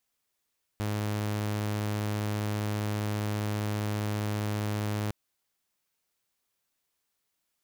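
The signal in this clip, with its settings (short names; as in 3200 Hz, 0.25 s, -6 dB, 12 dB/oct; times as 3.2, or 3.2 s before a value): tone saw 105 Hz -26 dBFS 4.31 s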